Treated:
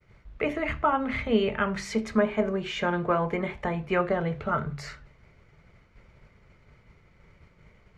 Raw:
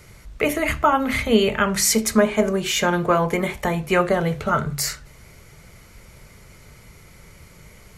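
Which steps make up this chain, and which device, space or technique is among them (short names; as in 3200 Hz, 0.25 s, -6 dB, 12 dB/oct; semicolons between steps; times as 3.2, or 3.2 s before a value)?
hearing-loss simulation (LPF 2700 Hz 12 dB/oct; expander -42 dBFS); gain -6.5 dB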